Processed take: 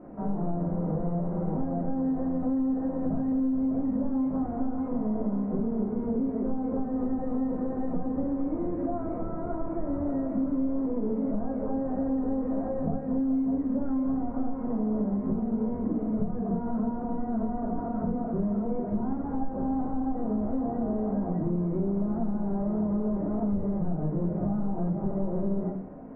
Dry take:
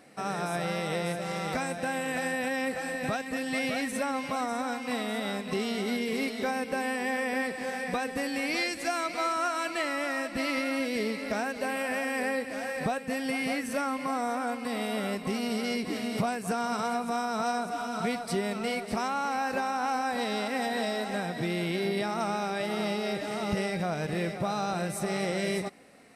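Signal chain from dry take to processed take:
linear delta modulator 16 kbit/s, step −46 dBFS
in parallel at −5.5 dB: wave folding −36 dBFS
on the sum: Bessel low-pass filter 650 Hz, order 4
rectangular room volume 250 cubic metres, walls furnished, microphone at 2.8 metres
downward compressor, threshold −24 dBFS, peak gain reduction 8.5 dB

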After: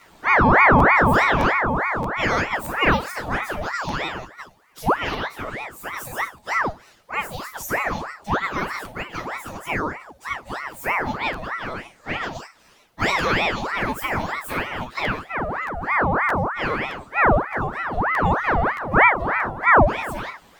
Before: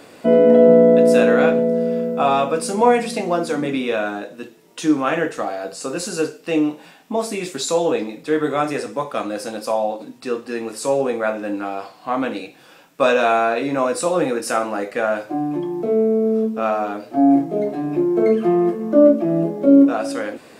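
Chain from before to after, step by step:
partials spread apart or drawn together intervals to 118%
regular buffer underruns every 0.62 s, samples 512, repeat, from 0:00.78
ring modulator whose carrier an LFO sweeps 990 Hz, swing 70%, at 3.2 Hz

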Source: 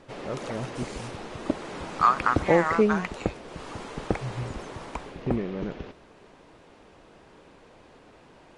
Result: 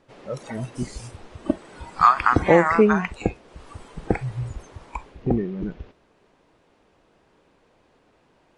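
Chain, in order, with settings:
noise reduction from a noise print of the clip's start 13 dB
level +5 dB

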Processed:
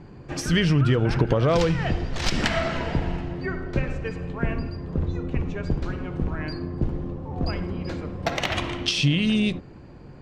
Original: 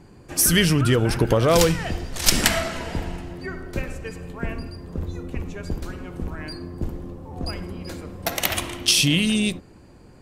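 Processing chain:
parametric band 140 Hz +7 dB 0.22 octaves
downward compressor 3 to 1, threshold −21 dBFS, peak gain reduction 8.5 dB
high-frequency loss of the air 160 metres
level +3.5 dB

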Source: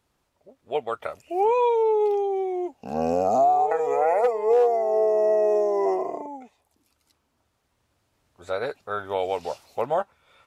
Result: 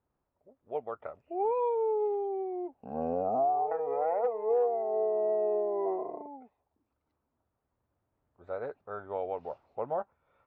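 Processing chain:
low-pass filter 1,200 Hz 12 dB per octave
level −8 dB

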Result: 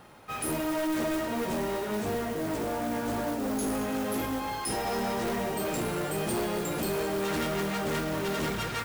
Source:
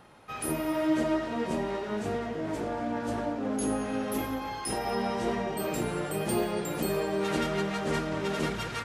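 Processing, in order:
noise that follows the level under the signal 16 dB
hard clipping −29.5 dBFS, distortion −10 dB
level +2.5 dB

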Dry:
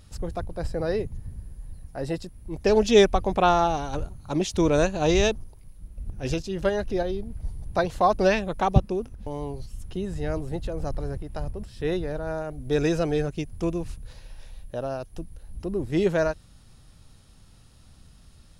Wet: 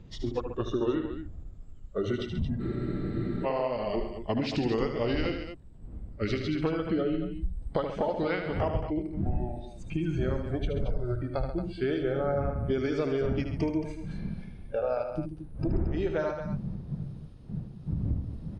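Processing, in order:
pitch glide at a constant tempo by −6 semitones ending unshifted
wind on the microphone 140 Hz −33 dBFS
noise reduction from a noise print of the clip's start 14 dB
dynamic equaliser 150 Hz, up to −7 dB, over −38 dBFS, Q 1
downward compressor 12 to 1, threshold −34 dBFS, peak gain reduction 20.5 dB
high-frequency loss of the air 150 metres
on a send: loudspeakers that aren't time-aligned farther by 26 metres −8 dB, 46 metres −11 dB, 77 metres −10 dB
on the sum: frozen spectrum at 0:02.63, 0.81 s
level +8.5 dB

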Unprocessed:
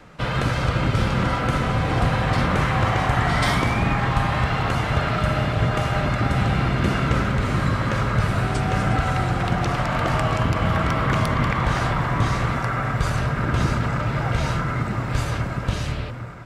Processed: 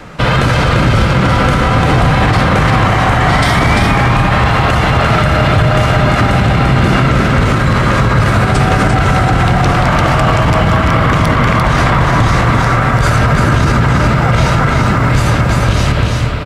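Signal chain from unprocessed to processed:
single-tap delay 344 ms −4.5 dB
boost into a limiter +15.5 dB
level −1 dB

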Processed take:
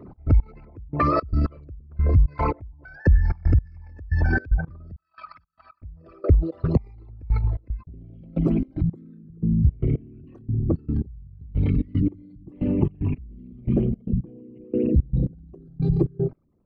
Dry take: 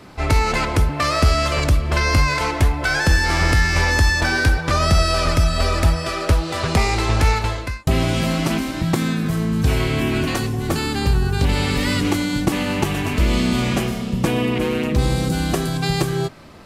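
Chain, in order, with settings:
spectral envelope exaggerated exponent 3
0:04.96–0:05.82: elliptic band-pass filter 1,000–4,300 Hz, stop band 40 dB
gate pattern "x.x....x" 113 BPM −24 dB

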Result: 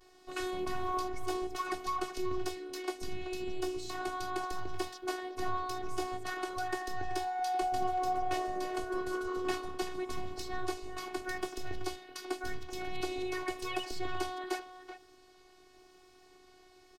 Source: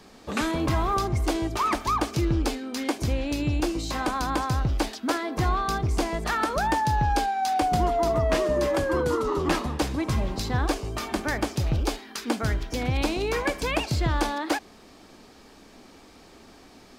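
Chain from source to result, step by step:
pitch vibrato 0.89 Hz 79 cents
far-end echo of a speakerphone 380 ms, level −10 dB
phases set to zero 369 Hz
level −8 dB

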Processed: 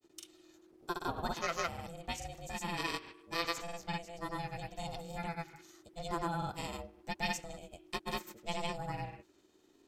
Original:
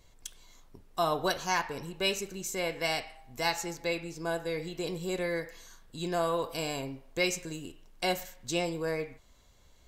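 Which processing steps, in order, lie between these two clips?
ring modulation 340 Hz
granular cloud, spray 100 ms, pitch spread up and down by 0 semitones
level −2.5 dB

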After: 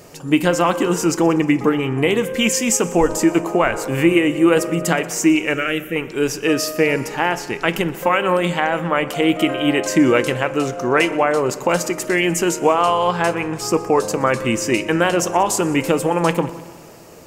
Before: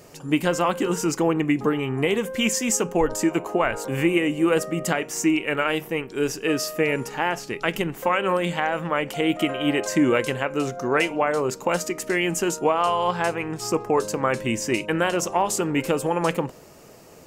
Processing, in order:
0:05.54–0:05.96: phaser with its sweep stopped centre 2,200 Hz, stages 4
echo machine with several playback heads 61 ms, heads second and third, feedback 59%, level −22 dB
on a send at −15.5 dB: convolution reverb RT60 1.1 s, pre-delay 3 ms
on the sum: level +5 dB

